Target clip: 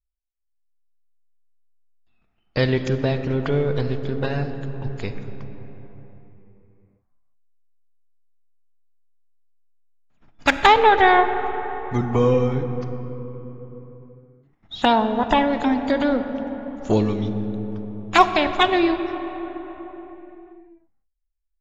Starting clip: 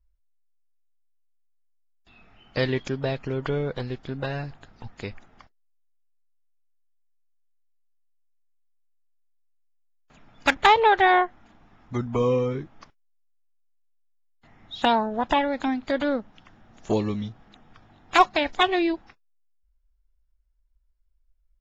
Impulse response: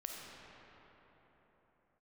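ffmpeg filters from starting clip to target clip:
-filter_complex "[0:a]agate=range=-23dB:threshold=-49dB:ratio=16:detection=peak,asplit=2[link_01][link_02];[1:a]atrim=start_sample=2205,lowshelf=frequency=370:gain=11[link_03];[link_02][link_03]afir=irnorm=-1:irlink=0,volume=-4dB[link_04];[link_01][link_04]amix=inputs=2:normalize=0"

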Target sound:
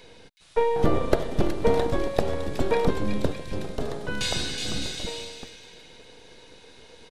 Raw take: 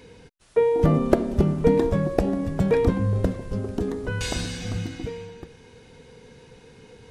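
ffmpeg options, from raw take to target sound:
ffmpeg -i in.wav -filter_complex "[0:a]equalizer=frequency=3800:width=2.2:gain=6.5,acrossover=split=410|1900[link_01][link_02][link_03];[link_01]aeval=exprs='abs(val(0))':channel_layout=same[link_04];[link_03]aecho=1:1:370|610.5|766.8|868.4|934.5:0.631|0.398|0.251|0.158|0.1[link_05];[link_04][link_02][link_05]amix=inputs=3:normalize=0" out.wav

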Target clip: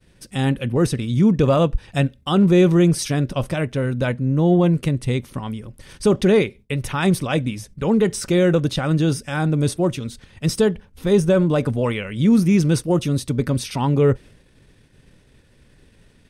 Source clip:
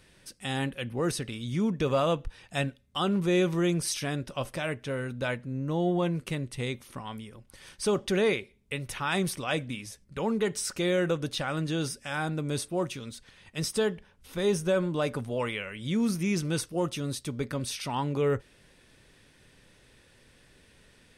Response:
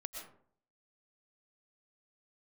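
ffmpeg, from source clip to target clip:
-af "agate=range=-33dB:threshold=-53dB:ratio=3:detection=peak,lowshelf=frequency=420:gain=10,atempo=1.3,volume=5dB"

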